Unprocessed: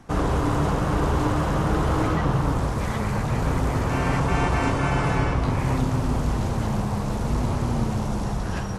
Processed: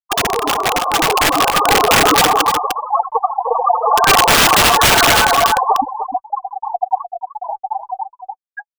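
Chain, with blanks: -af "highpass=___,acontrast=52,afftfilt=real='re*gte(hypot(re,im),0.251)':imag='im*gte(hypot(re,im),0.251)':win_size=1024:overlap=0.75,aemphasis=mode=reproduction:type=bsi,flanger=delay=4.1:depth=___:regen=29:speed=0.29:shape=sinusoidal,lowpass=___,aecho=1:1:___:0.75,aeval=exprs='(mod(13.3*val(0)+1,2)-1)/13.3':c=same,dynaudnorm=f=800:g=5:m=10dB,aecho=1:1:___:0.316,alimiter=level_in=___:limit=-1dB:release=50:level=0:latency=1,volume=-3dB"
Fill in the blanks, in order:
600, 3.2, 2.5k, 2.6, 302, 15.5dB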